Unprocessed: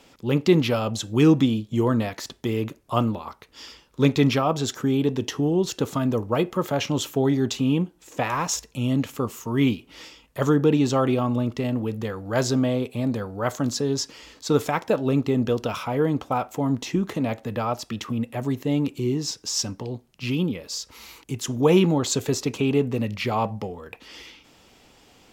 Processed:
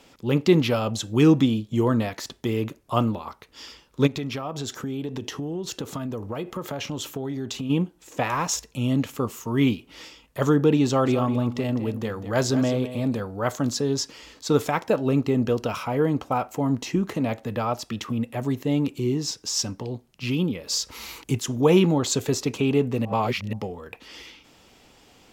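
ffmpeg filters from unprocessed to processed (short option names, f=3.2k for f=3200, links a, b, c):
-filter_complex "[0:a]asplit=3[a][b][c];[a]afade=t=out:st=4.06:d=0.02[d];[b]acompressor=threshold=-27dB:ratio=5:attack=3.2:release=140:knee=1:detection=peak,afade=t=in:st=4.06:d=0.02,afade=t=out:st=7.69:d=0.02[e];[c]afade=t=in:st=7.69:d=0.02[f];[d][e][f]amix=inputs=3:normalize=0,asettb=1/sr,asplit=3[g][h][i];[g]atrim=end=10.854[j];[h]atrim=start=10.85:end=13.2,asetpts=PTS-STARTPTS,afade=t=in:d=0.004:c=qsin,afade=t=out:st=2.346:d=0.004:c=qsin,aecho=1:1:206:0.251,atrim=end_sample=103635[k];[i]atrim=start=13.196[l];[j][k]acrossfade=d=0.004:c1=hsin:c2=qsin[m];[m][l]acrossfade=d=0.004:c1=qsin:c2=hsin,asettb=1/sr,asplit=3[n][o][p];[n]atrim=end=14.864[q];[o]atrim=start=14.86:end=17.25,asetpts=PTS-STARTPTS,afade=t=in:d=0.004:c=qsin,afade=t=out:st=2.386:d=0.004:c=qsin,bandreject=f=3.5k:w=12[r];[p]atrim=start=17.246[s];[q][r]acrossfade=d=0.004:c1=hsin:c2=qsin[t];[t][s]acrossfade=d=0.004:c1=qsin:c2=hsin,asettb=1/sr,asplit=3[u][v][w];[u]atrim=end=20.674[x];[v]atrim=start=20.67:end=21.39,asetpts=PTS-STARTPTS,afade=t=in:d=0.004:c=qsin,afade=t=out:st=0.716:d=0.004:c=qsin,acontrast=44[y];[w]atrim=start=21.386[z];[x][y]acrossfade=d=0.004:c1=hsin:c2=qsin[aa];[aa][z]acrossfade=d=0.004:c1=qsin:c2=hsin,asplit=3[ab][ac][ad];[ab]atrim=end=23.052[ae];[ac]atrim=start=23.048:end=23.532,asetpts=PTS-STARTPTS,areverse[af];[ad]atrim=start=23.528[ag];[ae][af]acrossfade=d=0.004:c1=hsin:c2=hsin[ah];[ah][ag]acrossfade=d=0.004:c1=hsin:c2=hsin"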